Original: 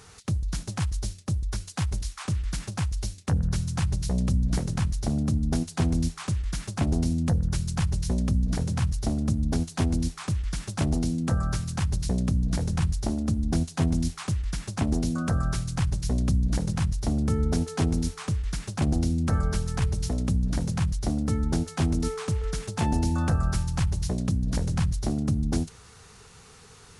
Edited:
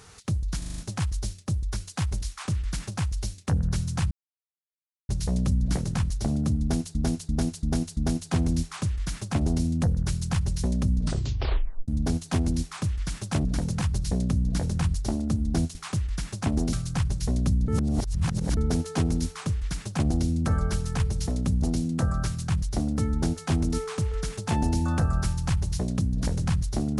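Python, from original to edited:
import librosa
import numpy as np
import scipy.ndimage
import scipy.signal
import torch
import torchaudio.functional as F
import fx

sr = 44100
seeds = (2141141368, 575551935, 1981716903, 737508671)

y = fx.edit(x, sr, fx.stutter(start_s=0.58, slice_s=0.04, count=6),
    fx.insert_silence(at_s=3.91, length_s=0.98),
    fx.repeat(start_s=5.43, length_s=0.34, count=5),
    fx.tape_stop(start_s=8.45, length_s=0.89),
    fx.swap(start_s=10.91, length_s=0.87, other_s=20.44, other_length_s=0.35),
    fx.cut(start_s=13.73, length_s=0.37),
    fx.cut(start_s=15.08, length_s=0.47),
    fx.reverse_span(start_s=16.5, length_s=0.89), tone=tone)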